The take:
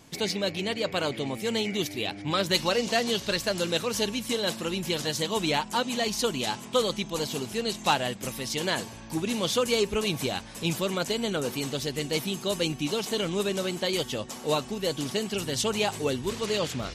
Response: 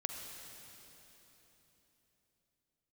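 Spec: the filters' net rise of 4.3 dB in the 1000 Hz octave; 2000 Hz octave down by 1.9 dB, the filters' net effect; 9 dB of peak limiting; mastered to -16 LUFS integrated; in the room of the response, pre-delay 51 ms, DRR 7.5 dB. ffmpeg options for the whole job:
-filter_complex "[0:a]equalizer=f=1k:t=o:g=6.5,equalizer=f=2k:t=o:g=-4.5,alimiter=limit=-17dB:level=0:latency=1,asplit=2[a][b];[1:a]atrim=start_sample=2205,adelay=51[c];[b][c]afir=irnorm=-1:irlink=0,volume=-8dB[d];[a][d]amix=inputs=2:normalize=0,volume=12dB"

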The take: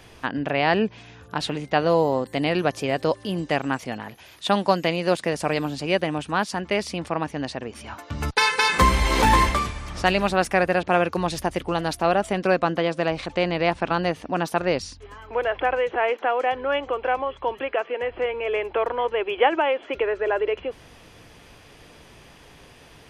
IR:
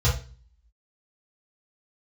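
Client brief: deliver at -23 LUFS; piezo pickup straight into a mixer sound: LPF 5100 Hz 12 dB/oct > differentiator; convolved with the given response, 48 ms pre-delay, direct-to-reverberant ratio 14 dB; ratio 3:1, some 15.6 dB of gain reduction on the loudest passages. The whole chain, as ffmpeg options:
-filter_complex "[0:a]acompressor=threshold=-35dB:ratio=3,asplit=2[a][b];[1:a]atrim=start_sample=2205,adelay=48[c];[b][c]afir=irnorm=-1:irlink=0,volume=-26.5dB[d];[a][d]amix=inputs=2:normalize=0,lowpass=5.1k,aderivative,volume=27.5dB"

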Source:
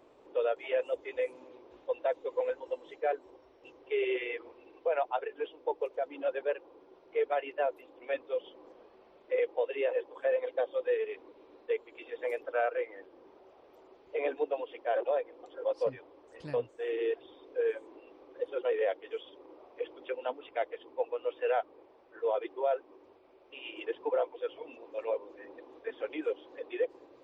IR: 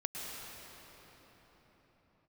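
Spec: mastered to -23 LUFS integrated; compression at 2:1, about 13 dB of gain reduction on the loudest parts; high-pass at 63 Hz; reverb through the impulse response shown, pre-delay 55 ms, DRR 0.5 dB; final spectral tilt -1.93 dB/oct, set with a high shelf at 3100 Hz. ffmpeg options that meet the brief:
-filter_complex "[0:a]highpass=63,highshelf=f=3.1k:g=6.5,acompressor=threshold=-50dB:ratio=2,asplit=2[a][b];[1:a]atrim=start_sample=2205,adelay=55[c];[b][c]afir=irnorm=-1:irlink=0,volume=-3dB[d];[a][d]amix=inputs=2:normalize=0,volume=21dB"

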